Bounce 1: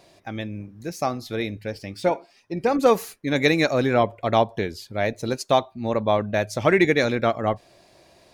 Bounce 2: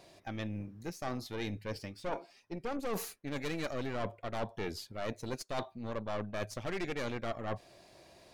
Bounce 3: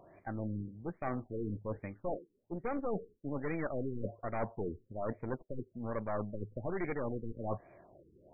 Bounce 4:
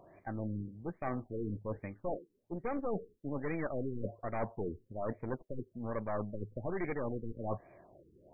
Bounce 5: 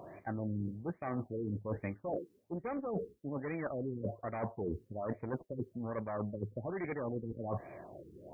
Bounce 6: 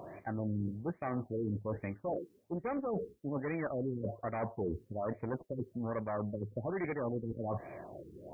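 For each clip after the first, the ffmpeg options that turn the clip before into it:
ffmpeg -i in.wav -af "aeval=exprs='(tanh(11.2*val(0)+0.8)-tanh(0.8))/11.2':channel_layout=same,areverse,acompressor=threshold=-36dB:ratio=4,areverse,volume=1dB" out.wav
ffmpeg -i in.wav -af "afftfilt=real='re*lt(b*sr/1024,470*pow(2500/470,0.5+0.5*sin(2*PI*1.2*pts/sr)))':imag='im*lt(b*sr/1024,470*pow(2500/470,0.5+0.5*sin(2*PI*1.2*pts/sr)))':win_size=1024:overlap=0.75,volume=1dB" out.wav
ffmpeg -i in.wav -af "bandreject=frequency=1400:width=17" out.wav
ffmpeg -i in.wav -af "areverse,acompressor=threshold=-43dB:ratio=6,areverse,highpass=61,volume=9dB" out.wav
ffmpeg -i in.wav -af "alimiter=level_in=5.5dB:limit=-24dB:level=0:latency=1:release=103,volume=-5.5dB,volume=2.5dB" out.wav

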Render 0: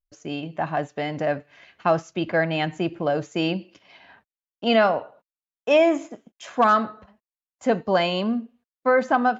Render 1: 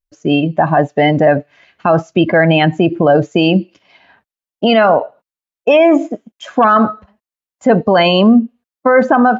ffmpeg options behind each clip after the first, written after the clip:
ffmpeg -i in.wav -af "afftdn=noise_reduction=16:noise_floor=-31,alimiter=level_in=19dB:limit=-1dB:release=50:level=0:latency=1,volume=-1dB" out.wav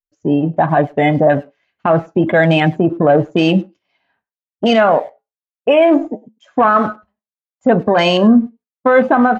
ffmpeg -i in.wav -filter_complex "[0:a]afwtdn=0.0794,asplit=2[link_01][link_02];[link_02]adelay=100,highpass=300,lowpass=3400,asoftclip=type=hard:threshold=-11dB,volume=-23dB[link_03];[link_01][link_03]amix=inputs=2:normalize=0,flanger=delay=6.7:depth=1.4:regen=-76:speed=0.3:shape=sinusoidal,volume=3dB" out.wav

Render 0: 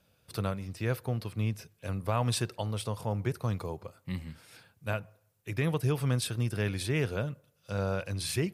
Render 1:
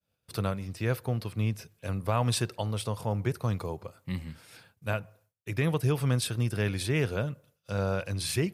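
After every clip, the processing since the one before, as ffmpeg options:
ffmpeg -i in.wav -af "agate=range=-33dB:threshold=-58dB:ratio=3:detection=peak,volume=2dB" out.wav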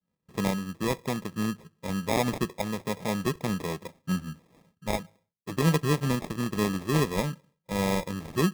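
ffmpeg -i in.wav -af "adynamicsmooth=sensitivity=5:basefreq=590,lowshelf=frequency=140:width_type=q:width=3:gain=-6.5,acrusher=samples=30:mix=1:aa=0.000001,volume=2.5dB" out.wav

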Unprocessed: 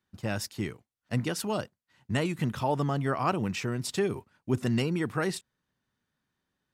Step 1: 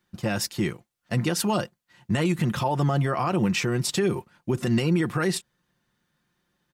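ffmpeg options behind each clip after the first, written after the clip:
ffmpeg -i in.wav -af "aecho=1:1:5.7:0.46,alimiter=limit=-22.5dB:level=0:latency=1:release=80,volume=7.5dB" out.wav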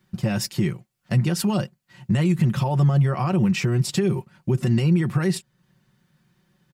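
ffmpeg -i in.wav -af "equalizer=frequency=120:width=1.2:gain=12,aecho=1:1:5.3:0.41,acompressor=threshold=-36dB:ratio=1.5,volume=4.5dB" out.wav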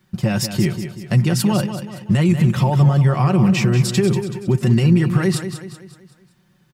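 ffmpeg -i in.wav -af "aecho=1:1:189|378|567|756|945:0.335|0.154|0.0709|0.0326|0.015,volume=4.5dB" out.wav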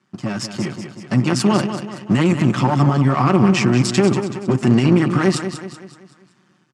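ffmpeg -i in.wav -af "aeval=exprs='if(lt(val(0),0),0.251*val(0),val(0))':channel_layout=same,highpass=frequency=130:width=0.5412,highpass=frequency=130:width=1.3066,equalizer=frequency=160:width_type=q:width=4:gain=-7,equalizer=frequency=270:width_type=q:width=4:gain=4,equalizer=frequency=500:width_type=q:width=4:gain=-5,equalizer=frequency=1200:width_type=q:width=4:gain=6,equalizer=frequency=3800:width_type=q:width=4:gain=-4,lowpass=frequency=8200:width=0.5412,lowpass=frequency=8200:width=1.3066,dynaudnorm=framelen=650:gausssize=3:maxgain=9dB" out.wav

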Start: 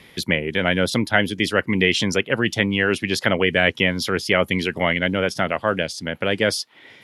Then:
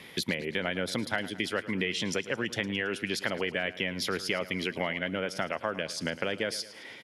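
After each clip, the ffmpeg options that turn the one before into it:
ffmpeg -i in.wav -af "highpass=frequency=150:poles=1,acompressor=threshold=-28dB:ratio=6,aecho=1:1:109|218|327|436|545:0.158|0.0856|0.0462|0.025|0.0135" out.wav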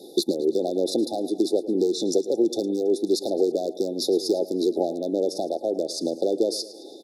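ffmpeg -i in.wav -af "aeval=exprs='clip(val(0),-1,0.075)':channel_layout=same,highpass=frequency=340:width_type=q:width=4.2,afftfilt=real='re*(1-between(b*sr/4096,850,3500))':imag='im*(1-between(b*sr/4096,850,3500))':win_size=4096:overlap=0.75,volume=5dB" out.wav

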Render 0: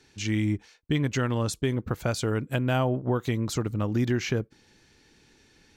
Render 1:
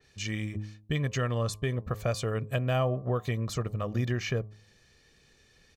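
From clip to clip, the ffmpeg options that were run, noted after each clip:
ffmpeg -i in.wav -af "aecho=1:1:1.7:0.58,bandreject=frequency=105.6:width_type=h:width=4,bandreject=frequency=211.2:width_type=h:width=4,bandreject=frequency=316.8:width_type=h:width=4,bandreject=frequency=422.4:width_type=h:width=4,bandreject=frequency=528:width_type=h:width=4,bandreject=frequency=633.6:width_type=h:width=4,bandreject=frequency=739.2:width_type=h:width=4,bandreject=frequency=844.8:width_type=h:width=4,bandreject=frequency=950.4:width_type=h:width=4,bandreject=frequency=1056:width_type=h:width=4,bandreject=frequency=1161.6:width_type=h:width=4,adynamicequalizer=threshold=0.00447:dfrequency=3800:dqfactor=0.7:tfrequency=3800:tqfactor=0.7:attack=5:release=100:ratio=0.375:range=2:mode=cutabove:tftype=highshelf,volume=-3.5dB" out.wav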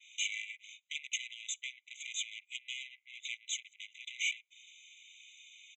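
ffmpeg -i in.wav -af "acompressor=threshold=-28dB:ratio=12,aresample=16000,asoftclip=type=tanh:threshold=-39.5dB,aresample=44100,afftfilt=real='re*eq(mod(floor(b*sr/1024/2000),2),1)':imag='im*eq(mod(floor(b*sr/1024/2000),2),1)':win_size=1024:overlap=0.75,volume=12dB" out.wav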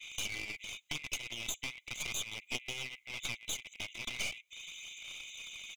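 ffmpeg -i in.wav -af "acompressor=threshold=-42dB:ratio=10,aphaser=in_gain=1:out_gain=1:delay=3.2:decay=0.3:speed=0.39:type=sinusoidal,aeval=exprs='clip(val(0),-1,0.002)':channel_layout=same,volume=10dB" out.wav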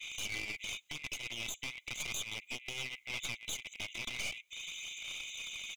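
ffmpeg -i in.wav -af "alimiter=level_in=5dB:limit=-24dB:level=0:latency=1:release=141,volume=-5dB,volume=3.5dB" out.wav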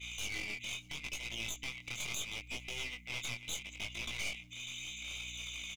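ffmpeg -i in.wav -af "aeval=exprs='val(0)+0.002*(sin(2*PI*60*n/s)+sin(2*PI*2*60*n/s)/2+sin(2*PI*3*60*n/s)/3+sin(2*PI*4*60*n/s)/4+sin(2*PI*5*60*n/s)/5)':channel_layout=same,flanger=delay=17.5:depth=7.2:speed=0.75,aecho=1:1:593|1186:0.0631|0.0133,volume=2.5dB" out.wav

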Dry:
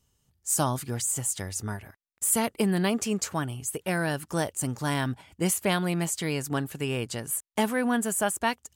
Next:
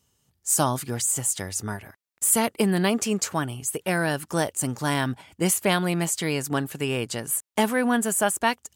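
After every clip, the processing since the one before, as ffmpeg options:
ffmpeg -i in.wav -af "highpass=frequency=130:poles=1,volume=4dB" out.wav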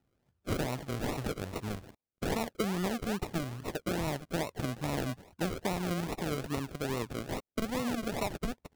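ffmpeg -i in.wav -af "highshelf=frequency=6600:gain=-5,acompressor=threshold=-23dB:ratio=6,acrusher=samples=39:mix=1:aa=0.000001:lfo=1:lforange=23.4:lforate=2.4,volume=-5.5dB" out.wav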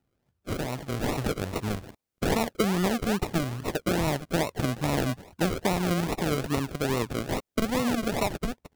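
ffmpeg -i in.wav -af "dynaudnorm=framelen=590:gausssize=3:maxgain=7dB" out.wav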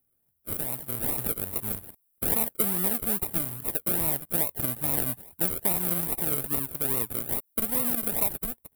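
ffmpeg -i in.wav -af "aexciter=amount=9.4:drive=9.3:freq=9000,volume=-8dB" out.wav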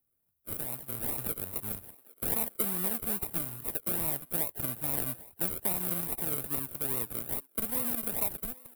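ffmpeg -i in.wav -filter_complex "[0:a]acrossover=split=230[link_01][link_02];[link_01]acrusher=samples=34:mix=1:aa=0.000001[link_03];[link_02]aecho=1:1:803:0.0794[link_04];[link_03][link_04]amix=inputs=2:normalize=0,volume=-5dB" out.wav

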